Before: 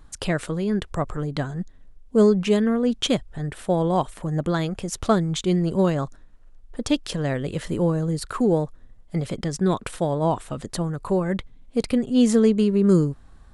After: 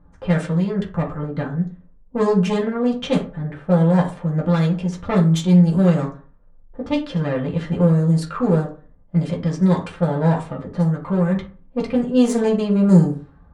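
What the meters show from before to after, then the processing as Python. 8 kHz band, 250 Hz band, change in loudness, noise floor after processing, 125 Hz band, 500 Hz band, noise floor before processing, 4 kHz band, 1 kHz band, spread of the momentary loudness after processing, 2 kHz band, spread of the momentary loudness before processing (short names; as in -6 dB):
n/a, +4.0 dB, +4.0 dB, -50 dBFS, +7.5 dB, +1.0 dB, -49 dBFS, -3.0 dB, +1.0 dB, 11 LU, +1.5 dB, 12 LU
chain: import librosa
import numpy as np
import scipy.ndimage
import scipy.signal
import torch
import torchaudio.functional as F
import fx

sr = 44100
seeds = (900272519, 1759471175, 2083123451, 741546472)

y = fx.diode_clip(x, sr, knee_db=-25.0)
y = fx.rev_fdn(y, sr, rt60_s=0.41, lf_ratio=1.0, hf_ratio=0.6, size_ms=34.0, drr_db=-3.0)
y = fx.env_lowpass(y, sr, base_hz=860.0, full_db=-11.0)
y = y * 10.0 ** (-1.5 / 20.0)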